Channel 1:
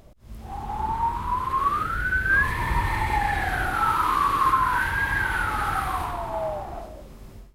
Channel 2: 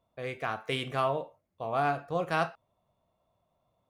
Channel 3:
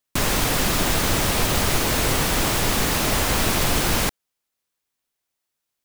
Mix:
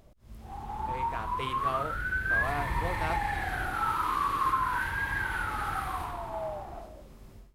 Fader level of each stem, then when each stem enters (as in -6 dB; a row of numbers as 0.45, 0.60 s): -7.0 dB, -6.0 dB, off; 0.00 s, 0.70 s, off